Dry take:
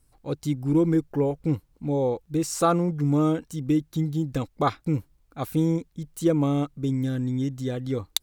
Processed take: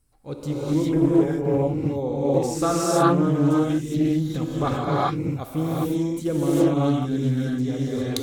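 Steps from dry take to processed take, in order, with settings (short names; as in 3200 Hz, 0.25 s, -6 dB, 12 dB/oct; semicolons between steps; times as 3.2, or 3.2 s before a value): non-linear reverb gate 0.43 s rising, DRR -7.5 dB; Doppler distortion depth 0.19 ms; gain -4 dB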